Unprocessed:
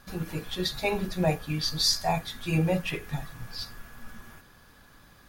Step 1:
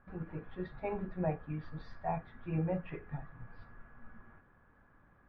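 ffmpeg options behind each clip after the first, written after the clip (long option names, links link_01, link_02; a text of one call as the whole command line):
ffmpeg -i in.wav -af "lowpass=frequency=1800:width=0.5412,lowpass=frequency=1800:width=1.3066,volume=-8.5dB" out.wav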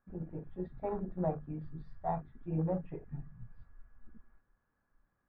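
ffmpeg -i in.wav -af "bandreject=frequency=50:width_type=h:width=6,bandreject=frequency=100:width_type=h:width=6,bandreject=frequency=150:width_type=h:width=6,afwtdn=0.00631,volume=1dB" out.wav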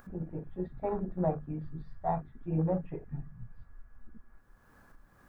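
ffmpeg -i in.wav -af "acompressor=mode=upward:threshold=-46dB:ratio=2.5,volume=3.5dB" out.wav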